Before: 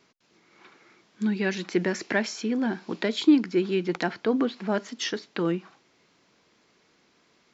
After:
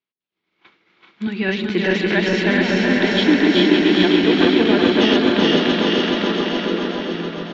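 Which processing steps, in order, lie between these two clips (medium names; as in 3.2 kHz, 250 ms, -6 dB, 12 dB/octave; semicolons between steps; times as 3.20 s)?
backward echo that repeats 212 ms, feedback 83%, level -1.5 dB; in parallel at -7.5 dB: saturation -20 dBFS, distortion -10 dB; on the sum: low-pass sweep 3.3 kHz -> 150 Hz, 6.05–7.05 s; on a send: two-band feedback delay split 520 Hz, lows 152 ms, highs 559 ms, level -6 dB; on the sum: expander -39 dBFS; bouncing-ball echo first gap 380 ms, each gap 0.8×, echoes 5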